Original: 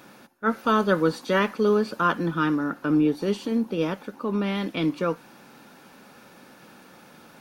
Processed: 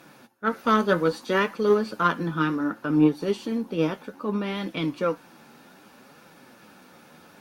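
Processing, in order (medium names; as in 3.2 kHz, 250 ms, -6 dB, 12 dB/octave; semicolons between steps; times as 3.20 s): flange 0.64 Hz, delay 5.7 ms, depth 7.8 ms, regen +44%; Chebyshev shaper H 3 -19 dB, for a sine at -12.5 dBFS; trim +6 dB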